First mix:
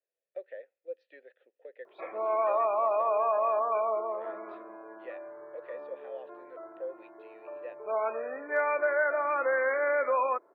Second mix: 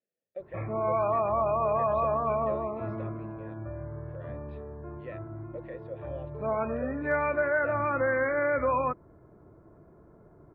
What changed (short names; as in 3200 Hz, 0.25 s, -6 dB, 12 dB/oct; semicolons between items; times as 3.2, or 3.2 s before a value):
background: entry -1.45 s; master: remove HPF 420 Hz 24 dB/oct